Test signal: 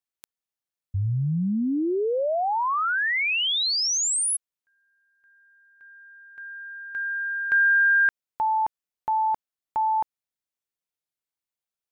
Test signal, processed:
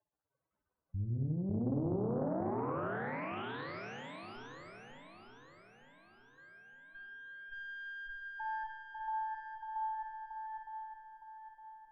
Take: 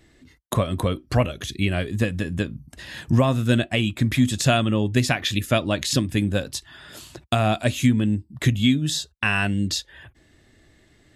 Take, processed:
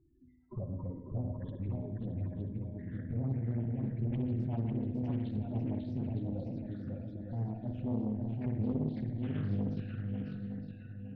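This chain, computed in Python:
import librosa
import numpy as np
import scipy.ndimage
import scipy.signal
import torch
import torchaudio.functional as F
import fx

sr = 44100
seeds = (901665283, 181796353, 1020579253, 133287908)

y = fx.dynamic_eq(x, sr, hz=820.0, q=0.89, threshold_db=-37.0, ratio=4.0, max_db=-7)
y = fx.dmg_crackle(y, sr, seeds[0], per_s=120.0, level_db=-39.0)
y = fx.tube_stage(y, sr, drive_db=26.0, bias=0.65)
y = fx.spec_topn(y, sr, count=8)
y = scipy.signal.sosfilt(scipy.signal.butter(2, 1100.0, 'lowpass', fs=sr, output='sos'), y)
y = fx.echo_swing(y, sr, ms=913, ratio=1.5, feedback_pct=40, wet_db=-3.5)
y = fx.rev_spring(y, sr, rt60_s=1.3, pass_ms=(52, 60), chirp_ms=55, drr_db=4.0)
y = fx.doppler_dist(y, sr, depth_ms=0.61)
y = F.gain(torch.from_numpy(y), -7.0).numpy()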